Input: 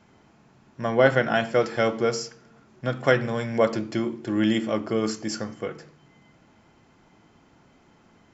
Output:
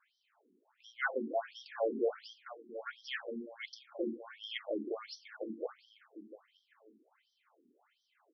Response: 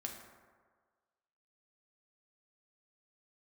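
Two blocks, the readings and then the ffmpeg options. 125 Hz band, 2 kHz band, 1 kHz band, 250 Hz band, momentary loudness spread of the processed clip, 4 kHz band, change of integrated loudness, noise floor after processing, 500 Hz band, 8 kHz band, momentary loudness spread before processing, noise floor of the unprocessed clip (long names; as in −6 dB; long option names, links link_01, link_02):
below −30 dB, −13.0 dB, −15.0 dB, −17.0 dB, 18 LU, −11.5 dB, −15.0 dB, −79 dBFS, −14.5 dB, can't be measured, 13 LU, −59 dBFS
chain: -af "aecho=1:1:918|1836:0.316|0.0506,afftfilt=real='re*between(b*sr/1024,290*pow(4400/290,0.5+0.5*sin(2*PI*1.4*pts/sr))/1.41,290*pow(4400/290,0.5+0.5*sin(2*PI*1.4*pts/sr))*1.41)':imag='im*between(b*sr/1024,290*pow(4400/290,0.5+0.5*sin(2*PI*1.4*pts/sr))/1.41,290*pow(4400/290,0.5+0.5*sin(2*PI*1.4*pts/sr))*1.41)':win_size=1024:overlap=0.75,volume=-7dB"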